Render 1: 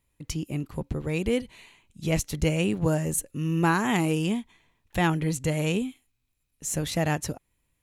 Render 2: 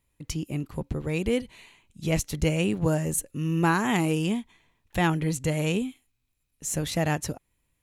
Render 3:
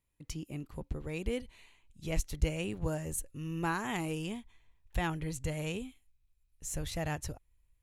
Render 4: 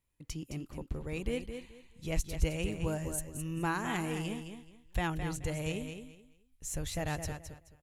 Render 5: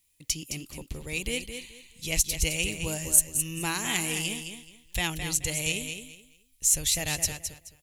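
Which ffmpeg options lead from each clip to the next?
ffmpeg -i in.wav -af anull out.wav
ffmpeg -i in.wav -af "asubboost=boost=9:cutoff=67,volume=-9dB" out.wav
ffmpeg -i in.wav -af "aecho=1:1:214|428|642:0.398|0.0916|0.0211" out.wav
ffmpeg -i in.wav -af "aexciter=amount=6.4:drive=3:freq=2100" out.wav

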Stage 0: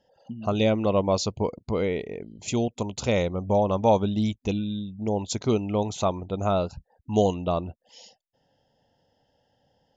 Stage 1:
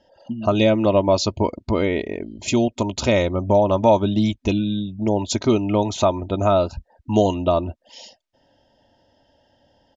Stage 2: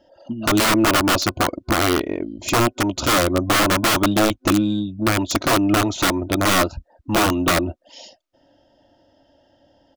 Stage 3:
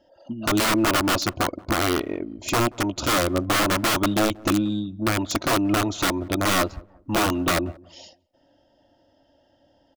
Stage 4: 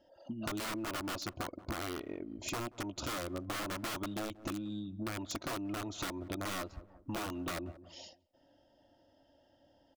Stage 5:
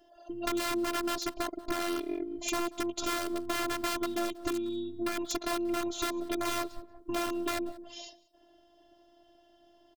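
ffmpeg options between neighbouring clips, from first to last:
ffmpeg -i in.wav -af "lowpass=6100,aecho=1:1:3.2:0.54,acompressor=threshold=-26dB:ratio=1.5,volume=8dB" out.wav
ffmpeg -i in.wav -af "aeval=exprs='(mod(4.73*val(0)+1,2)-1)/4.73':channel_layout=same,aeval=exprs='0.224*(cos(1*acos(clip(val(0)/0.224,-1,1)))-cos(1*PI/2))+0.0224*(cos(2*acos(clip(val(0)/0.224,-1,1)))-cos(2*PI/2))+0.00355*(cos(8*acos(clip(val(0)/0.224,-1,1)))-cos(8*PI/2))':channel_layout=same,superequalizer=6b=2.24:8b=1.58:10b=1.78" out.wav
ffmpeg -i in.wav -filter_complex "[0:a]asplit=2[link_01][link_02];[link_02]adelay=181,lowpass=frequency=800:poles=1,volume=-22dB,asplit=2[link_03][link_04];[link_04]adelay=181,lowpass=frequency=800:poles=1,volume=0.36,asplit=2[link_05][link_06];[link_06]adelay=181,lowpass=frequency=800:poles=1,volume=0.36[link_07];[link_01][link_03][link_05][link_07]amix=inputs=4:normalize=0,volume=-4dB" out.wav
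ffmpeg -i in.wav -af "acompressor=threshold=-31dB:ratio=6,volume=-6dB" out.wav
ffmpeg -i in.wav -af "afftfilt=real='hypot(re,im)*cos(PI*b)':imag='0':win_size=512:overlap=0.75,aecho=1:1:186:0.0631,volume=9dB" out.wav

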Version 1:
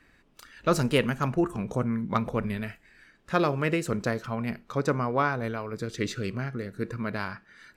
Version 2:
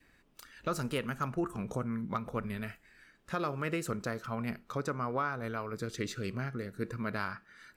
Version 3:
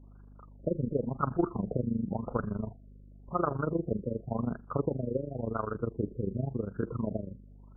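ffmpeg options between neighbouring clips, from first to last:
ffmpeg -i in.wav -af "adynamicequalizer=threshold=0.00708:dfrequency=1300:dqfactor=3.7:tfrequency=1300:tqfactor=3.7:attack=5:release=100:ratio=0.375:range=3.5:mode=boostabove:tftype=bell,alimiter=limit=-18dB:level=0:latency=1:release=332,highshelf=frequency=9200:gain=8,volume=-4.5dB" out.wav
ffmpeg -i in.wav -af "tremolo=f=25:d=0.857,aeval=exprs='val(0)+0.00112*(sin(2*PI*50*n/s)+sin(2*PI*2*50*n/s)/2+sin(2*PI*3*50*n/s)/3+sin(2*PI*4*50*n/s)/4+sin(2*PI*5*50*n/s)/5)':channel_layout=same,afftfilt=real='re*lt(b*sr/1024,560*pow(1700/560,0.5+0.5*sin(2*PI*0.92*pts/sr)))':imag='im*lt(b*sr/1024,560*pow(1700/560,0.5+0.5*sin(2*PI*0.92*pts/sr)))':win_size=1024:overlap=0.75,volume=8dB" out.wav

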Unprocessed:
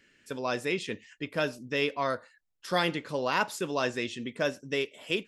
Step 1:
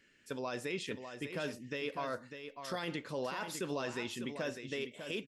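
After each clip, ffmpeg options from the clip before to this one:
ffmpeg -i in.wav -filter_complex "[0:a]alimiter=limit=-23.5dB:level=0:latency=1:release=36,asplit=2[link_01][link_02];[link_02]aecho=0:1:599:0.376[link_03];[link_01][link_03]amix=inputs=2:normalize=0,volume=-4dB" out.wav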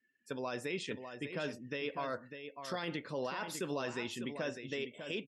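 ffmpeg -i in.wav -af "afftdn=noise_reduction=23:noise_floor=-58,highpass=61" out.wav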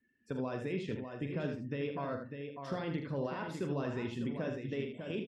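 ffmpeg -i in.wav -filter_complex "[0:a]aemphasis=mode=reproduction:type=riaa,asplit=2[link_01][link_02];[link_02]acompressor=threshold=-44dB:ratio=6,volume=0.5dB[link_03];[link_01][link_03]amix=inputs=2:normalize=0,aecho=1:1:43|78:0.335|0.447,volume=-5dB" out.wav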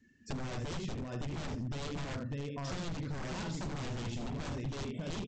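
ffmpeg -i in.wav -af "aresample=16000,aeval=exprs='0.0133*(abs(mod(val(0)/0.0133+3,4)-2)-1)':channel_layout=same,aresample=44100,bass=frequency=250:gain=12,treble=frequency=4000:gain=12,acompressor=threshold=-42dB:ratio=6,volume=6.5dB" out.wav

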